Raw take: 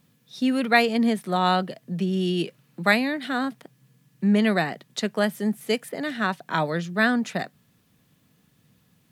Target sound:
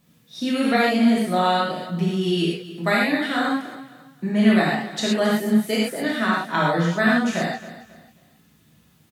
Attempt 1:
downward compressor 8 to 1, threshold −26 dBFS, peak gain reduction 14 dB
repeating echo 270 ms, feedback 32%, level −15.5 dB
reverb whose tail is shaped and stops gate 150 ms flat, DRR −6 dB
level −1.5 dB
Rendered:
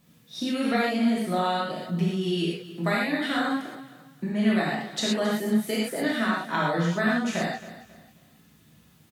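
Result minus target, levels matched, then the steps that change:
downward compressor: peak gain reduction +6.5 dB
change: downward compressor 8 to 1, threshold −18.5 dBFS, peak gain reduction 7.5 dB

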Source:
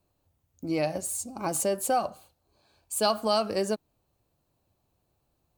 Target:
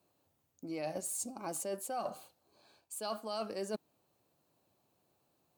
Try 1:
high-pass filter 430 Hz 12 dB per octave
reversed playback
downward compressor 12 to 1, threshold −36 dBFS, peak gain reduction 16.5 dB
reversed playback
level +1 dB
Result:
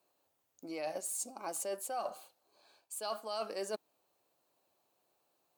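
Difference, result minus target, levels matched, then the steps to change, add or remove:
250 Hz band −5.0 dB
change: high-pass filter 180 Hz 12 dB per octave

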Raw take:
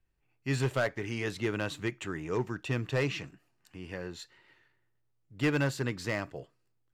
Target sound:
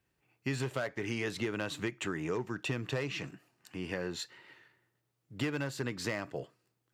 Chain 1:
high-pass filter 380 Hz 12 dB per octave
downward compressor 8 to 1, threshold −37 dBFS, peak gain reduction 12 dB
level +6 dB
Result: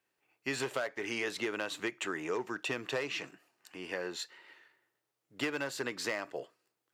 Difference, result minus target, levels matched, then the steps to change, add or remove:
125 Hz band −13.0 dB
change: high-pass filter 120 Hz 12 dB per octave

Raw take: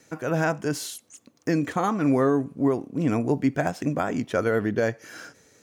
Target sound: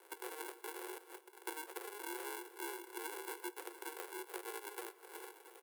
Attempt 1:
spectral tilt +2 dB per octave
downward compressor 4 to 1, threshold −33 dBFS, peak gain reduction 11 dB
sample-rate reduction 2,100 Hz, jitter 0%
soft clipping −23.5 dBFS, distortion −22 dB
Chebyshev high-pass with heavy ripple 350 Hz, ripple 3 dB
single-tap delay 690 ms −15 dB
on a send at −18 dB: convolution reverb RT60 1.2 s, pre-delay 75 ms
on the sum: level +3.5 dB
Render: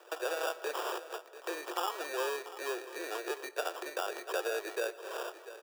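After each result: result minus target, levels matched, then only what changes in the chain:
sample-rate reduction: distortion −26 dB; downward compressor: peak gain reduction −7.5 dB; 8,000 Hz band −5.0 dB
change: sample-rate reduction 620 Hz, jitter 0%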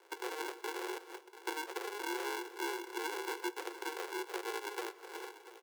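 downward compressor: peak gain reduction −7.5 dB; 8,000 Hz band −4.0 dB
change: downward compressor 4 to 1, threshold −43 dBFS, peak gain reduction 18.5 dB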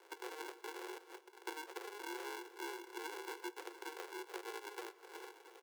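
8,000 Hz band −4.0 dB
add after Chebyshev high-pass with heavy ripple: high shelf with overshoot 7,700 Hz +8 dB, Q 1.5

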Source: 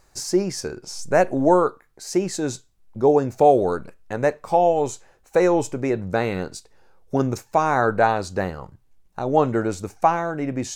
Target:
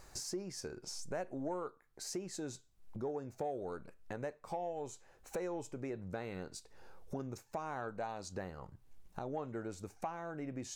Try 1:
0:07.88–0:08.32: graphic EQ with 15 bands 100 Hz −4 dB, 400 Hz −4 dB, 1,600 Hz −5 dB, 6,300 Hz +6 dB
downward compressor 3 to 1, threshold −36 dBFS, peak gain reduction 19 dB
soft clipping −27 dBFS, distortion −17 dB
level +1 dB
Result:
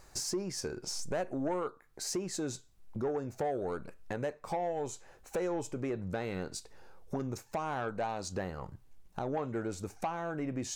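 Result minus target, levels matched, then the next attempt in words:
downward compressor: peak gain reduction −7.5 dB
0:07.88–0:08.32: graphic EQ with 15 bands 100 Hz −4 dB, 400 Hz −4 dB, 1,600 Hz −5 dB, 6,300 Hz +6 dB
downward compressor 3 to 1, threshold −47 dBFS, peak gain reduction 26.5 dB
soft clipping −27 dBFS, distortion −28 dB
level +1 dB

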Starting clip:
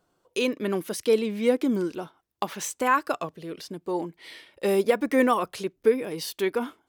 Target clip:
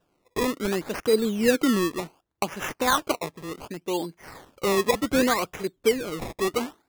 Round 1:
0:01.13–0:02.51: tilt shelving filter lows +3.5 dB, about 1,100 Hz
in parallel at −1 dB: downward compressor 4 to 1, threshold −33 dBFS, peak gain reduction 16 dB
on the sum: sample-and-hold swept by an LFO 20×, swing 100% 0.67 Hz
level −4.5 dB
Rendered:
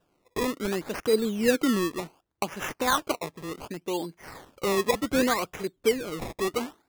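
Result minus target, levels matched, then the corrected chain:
downward compressor: peak gain reduction +8.5 dB
0:01.13–0:02.51: tilt shelving filter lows +3.5 dB, about 1,100 Hz
in parallel at −1 dB: downward compressor 4 to 1, threshold −21.5 dBFS, peak gain reduction 7.5 dB
on the sum: sample-and-hold swept by an LFO 20×, swing 100% 0.67 Hz
level −4.5 dB

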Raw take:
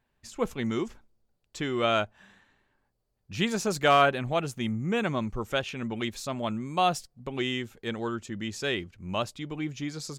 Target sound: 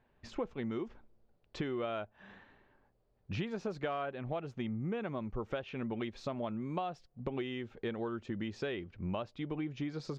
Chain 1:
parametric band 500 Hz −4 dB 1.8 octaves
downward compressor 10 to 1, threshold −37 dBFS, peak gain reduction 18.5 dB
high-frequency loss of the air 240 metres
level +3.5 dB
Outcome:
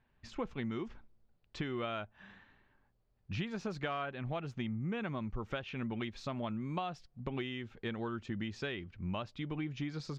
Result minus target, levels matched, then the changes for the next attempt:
500 Hz band −3.0 dB
change: parametric band 500 Hz +4.5 dB 1.8 octaves

